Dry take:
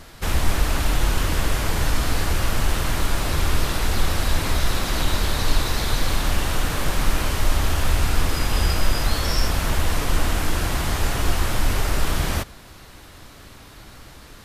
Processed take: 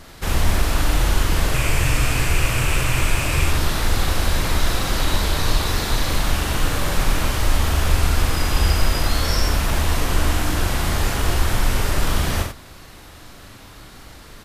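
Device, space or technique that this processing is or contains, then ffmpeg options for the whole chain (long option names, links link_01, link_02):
slapback doubling: -filter_complex "[0:a]asettb=1/sr,asplit=3[link_01][link_02][link_03];[link_01]atrim=end=1.544[link_04];[link_02]atrim=start=1.54:end=3.48,asetpts=PTS-STARTPTS,afade=type=in:duration=0.004:curve=qsin,afade=type=out:start_time=1.936:duration=0.004:curve=qsin,equalizer=frequency=125:width_type=o:width=0.33:gain=8,equalizer=frequency=200:width_type=o:width=0.33:gain=-7,equalizer=frequency=800:width_type=o:width=0.33:gain=-3,equalizer=frequency=2500:width_type=o:width=0.33:gain=11,equalizer=frequency=4000:width_type=o:width=0.33:gain=-4,equalizer=frequency=8000:width_type=o:width=0.33:gain=5[link_05];[link_03]atrim=start=3.476[link_06];[link_04][link_05]acrossfade=duration=0.004:curve1=hsin:curve2=qsin[link_07];[link_07][link_06]acrossfade=duration=0.004:curve1=qsin:curve2=hsin,asplit=3[link_08][link_09][link_10];[link_09]adelay=40,volume=-4.5dB[link_11];[link_10]adelay=90,volume=-6.5dB[link_12];[link_08][link_11][link_12]amix=inputs=3:normalize=0"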